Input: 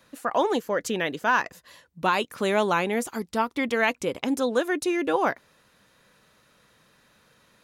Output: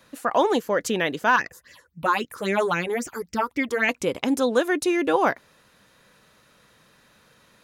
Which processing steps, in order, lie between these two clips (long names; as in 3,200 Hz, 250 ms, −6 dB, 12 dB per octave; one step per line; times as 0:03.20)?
0:01.36–0:03.89: all-pass phaser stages 6, 3.7 Hz, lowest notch 170–1,100 Hz
level +3 dB